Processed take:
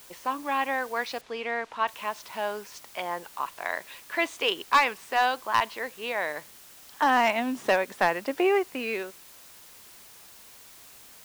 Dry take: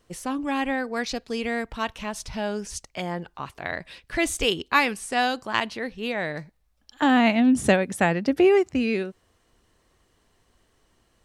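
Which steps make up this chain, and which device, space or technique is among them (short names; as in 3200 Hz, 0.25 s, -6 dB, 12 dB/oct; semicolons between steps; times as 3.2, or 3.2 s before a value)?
drive-through speaker (BPF 510–3500 Hz; bell 1000 Hz +7.5 dB 0.33 oct; hard clip -14 dBFS, distortion -16 dB; white noise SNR 21 dB); 1.21–1.88 Bessel low-pass 3900 Hz, order 2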